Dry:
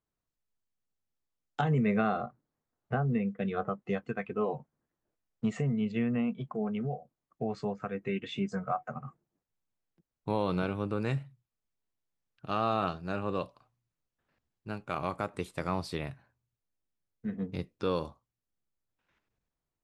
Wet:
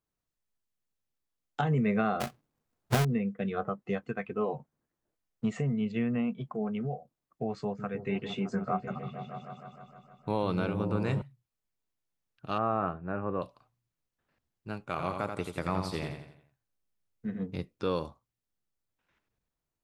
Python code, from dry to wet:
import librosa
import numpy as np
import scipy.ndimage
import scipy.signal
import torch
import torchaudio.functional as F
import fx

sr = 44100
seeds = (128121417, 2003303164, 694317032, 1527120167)

y = fx.halfwave_hold(x, sr, at=(2.2, 3.05))
y = fx.echo_opening(y, sr, ms=154, hz=200, octaves=1, feedback_pct=70, wet_db=-3, at=(7.56, 11.22))
y = fx.lowpass(y, sr, hz=1900.0, slope=24, at=(12.58, 13.42))
y = fx.echo_feedback(y, sr, ms=85, feedback_pct=44, wet_db=-6, at=(14.97, 17.39), fade=0.02)